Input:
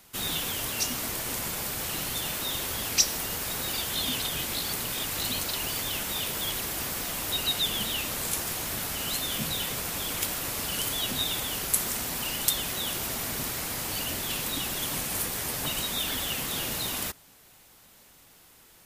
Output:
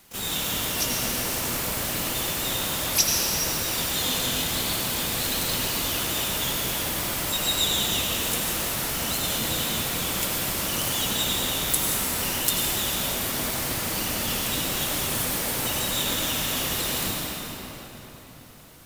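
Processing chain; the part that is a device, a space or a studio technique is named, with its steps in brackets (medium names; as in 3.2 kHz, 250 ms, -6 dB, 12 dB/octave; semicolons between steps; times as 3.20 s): shimmer-style reverb (harmony voices +12 st -6 dB; reverberation RT60 4.2 s, pre-delay 79 ms, DRR -2.5 dB)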